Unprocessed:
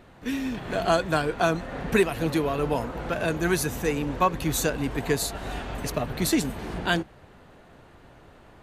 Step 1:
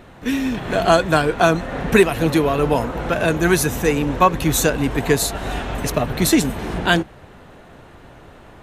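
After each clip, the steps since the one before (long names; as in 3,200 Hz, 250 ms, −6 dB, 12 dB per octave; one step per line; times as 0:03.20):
notch filter 4,600 Hz, Q 16
level +8 dB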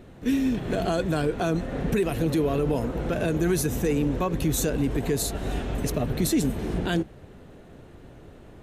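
drawn EQ curve 420 Hz 0 dB, 940 Hz −10 dB, 8,000 Hz −4 dB
brickwall limiter −13.5 dBFS, peak gain reduction 10.5 dB
level −2 dB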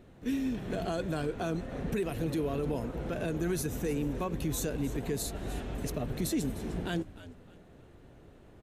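echo with shifted repeats 304 ms, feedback 30%, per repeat −78 Hz, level −15.5 dB
level −8 dB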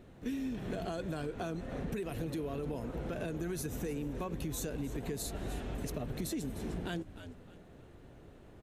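downward compressor, threshold −34 dBFS, peak gain reduction 7 dB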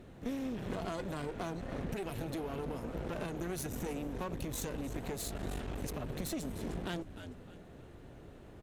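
asymmetric clip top −47 dBFS
level +2.5 dB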